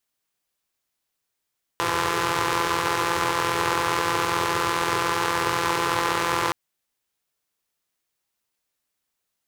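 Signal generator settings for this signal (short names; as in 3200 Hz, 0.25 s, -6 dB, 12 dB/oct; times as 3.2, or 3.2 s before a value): four-cylinder engine model, steady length 4.72 s, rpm 5100, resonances 120/420/980 Hz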